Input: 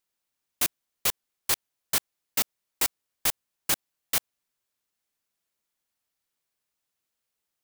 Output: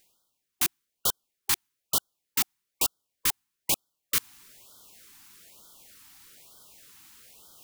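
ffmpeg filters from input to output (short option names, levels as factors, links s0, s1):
-af "areverse,acompressor=mode=upward:threshold=0.0355:ratio=2.5,areverse,afftfilt=real='re*(1-between(b*sr/1024,490*pow(2200/490,0.5+0.5*sin(2*PI*1.1*pts/sr))/1.41,490*pow(2200/490,0.5+0.5*sin(2*PI*1.1*pts/sr))*1.41))':imag='im*(1-between(b*sr/1024,490*pow(2200/490,0.5+0.5*sin(2*PI*1.1*pts/sr))/1.41,490*pow(2200/490,0.5+0.5*sin(2*PI*1.1*pts/sr))*1.41))':win_size=1024:overlap=0.75"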